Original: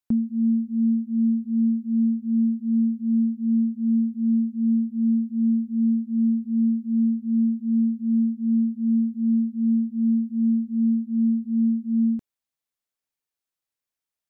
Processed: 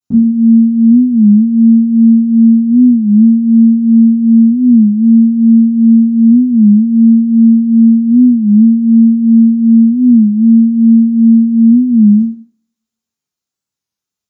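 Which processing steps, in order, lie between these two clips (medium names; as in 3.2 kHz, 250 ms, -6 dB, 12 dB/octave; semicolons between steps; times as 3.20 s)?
reverberation RT60 0.55 s, pre-delay 3 ms, DRR -17.5 dB; warped record 33 1/3 rpm, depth 160 cents; trim -11.5 dB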